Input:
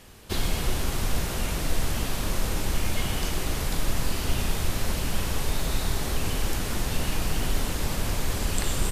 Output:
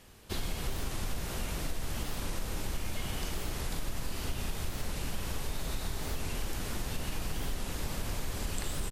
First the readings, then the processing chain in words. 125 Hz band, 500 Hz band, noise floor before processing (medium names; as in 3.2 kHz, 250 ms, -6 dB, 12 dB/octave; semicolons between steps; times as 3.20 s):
-8.5 dB, -8.5 dB, -30 dBFS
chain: compression, threshold -22 dBFS, peak gain reduction 5.5 dB; warped record 45 rpm, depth 160 cents; trim -6.5 dB